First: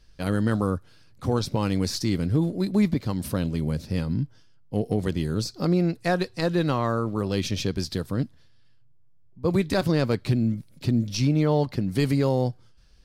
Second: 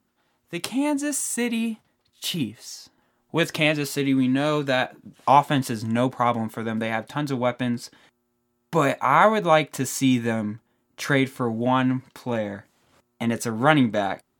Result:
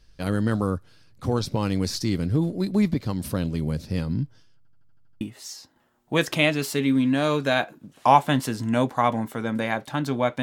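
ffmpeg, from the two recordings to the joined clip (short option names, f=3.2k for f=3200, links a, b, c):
-filter_complex "[0:a]apad=whole_dur=10.42,atrim=end=10.42,asplit=8[a][b][c][d][e][f][g][h];[a]atrim=end=4.652[i];[b]atrim=start=4.568:end=4.652[j];[c]atrim=start=4.568:end=4.652[k];[d]atrim=start=4.568:end=4.652[l];[e]atrim=start=4.568:end=4.652[m];[f]atrim=start=4.568:end=4.652[n];[g]atrim=start=4.568:end=4.652[o];[h]atrim=start=4.568:end=4.652[p];[1:a]atrim=start=2.428:end=7.64[q];[i][j]acrossfade=d=0.004:c1=hsin:c2=hsin[r];[r][k]acrossfade=d=0.004:c1=hsin:c2=hsin[s];[s][l]acrossfade=d=0.004:c1=hsin:c2=hsin[t];[t][m]acrossfade=d=0.004:c1=hsin:c2=hsin[u];[u][n]acrossfade=d=0.004:c1=hsin:c2=hsin[v];[v][o]acrossfade=d=0.004:c1=hsin:c2=hsin[w];[w][p]acrossfade=d=0.004:c1=hsin:c2=hsin[x];[x][q]acrossfade=d=0.004:c1=hsin:c2=hsin"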